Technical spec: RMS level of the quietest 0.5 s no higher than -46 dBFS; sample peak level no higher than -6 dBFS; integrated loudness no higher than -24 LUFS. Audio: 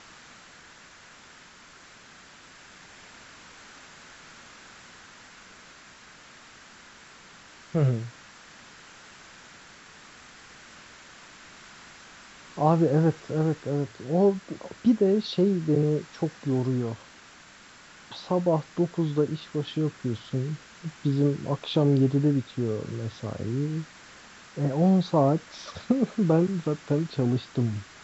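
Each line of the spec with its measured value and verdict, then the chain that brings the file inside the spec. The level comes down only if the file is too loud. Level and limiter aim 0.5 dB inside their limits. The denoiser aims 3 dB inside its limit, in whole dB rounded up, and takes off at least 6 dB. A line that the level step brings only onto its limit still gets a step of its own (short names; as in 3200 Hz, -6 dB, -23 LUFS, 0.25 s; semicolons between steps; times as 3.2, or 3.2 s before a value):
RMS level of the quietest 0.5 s -51 dBFS: OK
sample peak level -8.5 dBFS: OK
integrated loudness -26.0 LUFS: OK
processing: none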